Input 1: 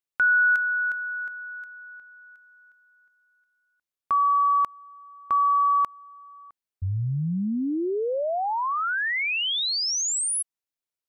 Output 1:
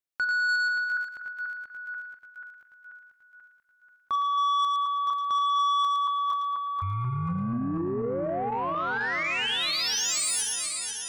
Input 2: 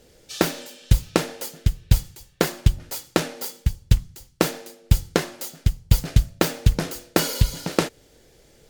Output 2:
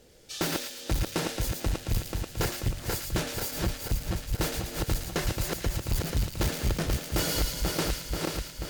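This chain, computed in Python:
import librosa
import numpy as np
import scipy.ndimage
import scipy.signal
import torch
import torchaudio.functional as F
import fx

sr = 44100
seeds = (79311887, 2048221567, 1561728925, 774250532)

y = fx.reverse_delay_fb(x, sr, ms=243, feedback_pct=74, wet_db=-6)
y = 10.0 ** (-19.0 / 20.0) * np.tanh(y / 10.0 ** (-19.0 / 20.0))
y = fx.echo_wet_highpass(y, sr, ms=112, feedback_pct=38, hz=2000.0, wet_db=-4.0)
y = y * librosa.db_to_amplitude(-3.0)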